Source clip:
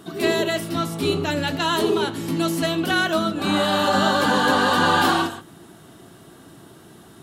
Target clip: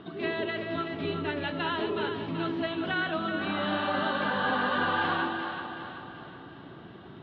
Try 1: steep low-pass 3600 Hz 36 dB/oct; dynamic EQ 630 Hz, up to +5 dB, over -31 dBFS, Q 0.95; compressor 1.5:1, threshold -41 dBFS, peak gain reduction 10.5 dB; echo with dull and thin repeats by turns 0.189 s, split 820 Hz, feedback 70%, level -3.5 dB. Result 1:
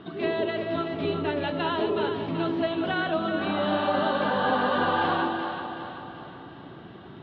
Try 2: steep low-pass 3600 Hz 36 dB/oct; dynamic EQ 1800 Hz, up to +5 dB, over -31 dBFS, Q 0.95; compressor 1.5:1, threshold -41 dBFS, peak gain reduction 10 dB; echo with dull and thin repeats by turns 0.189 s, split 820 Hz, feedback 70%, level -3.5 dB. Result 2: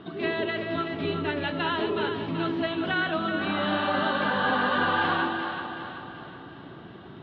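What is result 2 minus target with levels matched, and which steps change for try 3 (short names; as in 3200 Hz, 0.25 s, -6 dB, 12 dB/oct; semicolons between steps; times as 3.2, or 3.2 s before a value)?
compressor: peak gain reduction -3 dB
change: compressor 1.5:1, threshold -50 dBFS, peak gain reduction 13 dB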